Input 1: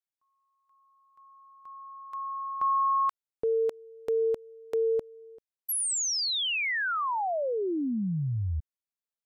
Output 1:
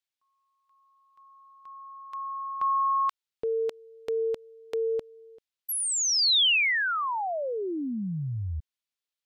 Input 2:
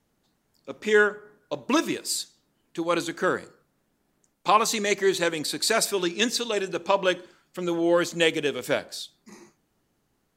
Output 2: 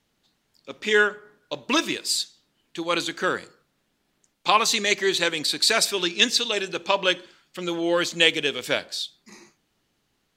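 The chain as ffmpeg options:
ffmpeg -i in.wav -af "equalizer=frequency=3400:width=0.68:gain=10,volume=-2dB" out.wav

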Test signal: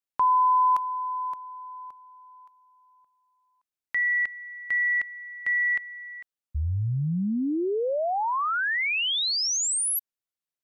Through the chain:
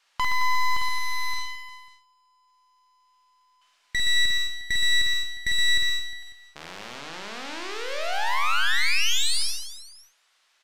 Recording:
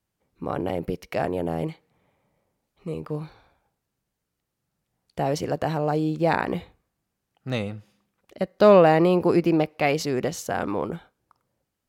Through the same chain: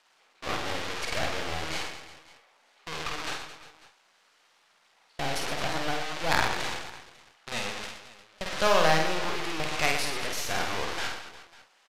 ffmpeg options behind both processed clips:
ffmpeg -i in.wav -filter_complex "[0:a]aeval=exprs='val(0)+0.5*0.0944*sgn(val(0))':channel_layout=same,lowpass=4700,agate=range=-27dB:threshold=-24dB:ratio=16:release=436:detection=rms,highpass=900,asplit=2[link_01][link_02];[link_02]acompressor=threshold=-32dB:ratio=20:attack=7.1:release=111:knee=6:detection=peak,volume=-2.5dB[link_03];[link_01][link_03]amix=inputs=2:normalize=0,aeval=exprs='0.447*(cos(1*acos(clip(val(0)/0.447,-1,1)))-cos(1*PI/2))+0.1*(cos(3*acos(clip(val(0)/0.447,-1,1)))-cos(3*PI/2))+0.0355*(cos(8*acos(clip(val(0)/0.447,-1,1)))-cos(8*PI/2))':channel_layout=same,acrusher=bits=6:mode=log:mix=0:aa=0.000001,asplit=2[link_04][link_05];[link_05]aecho=0:1:50|120|218|355.2|547.3:0.631|0.398|0.251|0.158|0.1[link_06];[link_04][link_06]amix=inputs=2:normalize=0" -ar 32000 -c:a libvorbis -b:a 128k out.ogg

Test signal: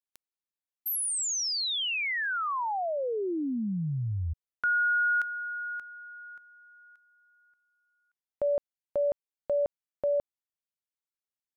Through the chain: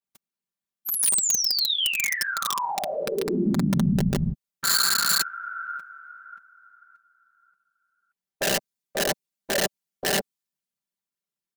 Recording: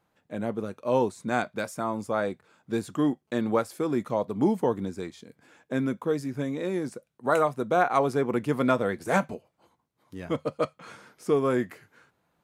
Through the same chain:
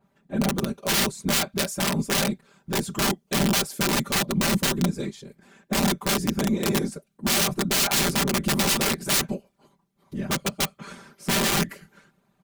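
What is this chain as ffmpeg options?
ffmpeg -i in.wav -af "afftfilt=real='hypot(re,im)*cos(2*PI*random(0))':imag='hypot(re,im)*sin(2*PI*random(1))':win_size=512:overlap=0.75,aeval=exprs='(mod(26.6*val(0)+1,2)-1)/26.6':channel_layout=same,equalizer=frequency=180:width=0.78:gain=9,acontrast=55,aecho=1:1:5.1:0.56,adynamicequalizer=threshold=0.00794:dfrequency=2800:dqfactor=0.7:tfrequency=2800:tqfactor=0.7:attack=5:release=100:ratio=0.438:range=3.5:mode=boostabove:tftype=highshelf" out.wav

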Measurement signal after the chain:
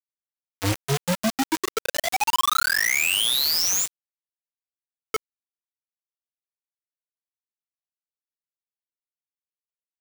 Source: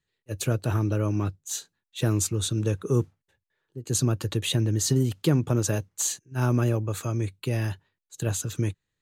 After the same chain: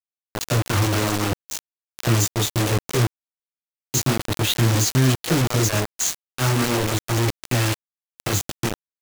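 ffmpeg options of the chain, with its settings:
ffmpeg -i in.wav -filter_complex "[0:a]aresample=16000,acrusher=bits=4:mode=log:mix=0:aa=0.000001,aresample=44100,flanger=delay=16:depth=6.6:speed=0.4,lowshelf=frequency=250:gain=-2.5,acrossover=split=480[link_01][link_02];[link_01]adelay=40[link_03];[link_03][link_02]amix=inputs=2:normalize=0,acrusher=bits=4:mix=0:aa=0.000001,volume=8dB" out.wav

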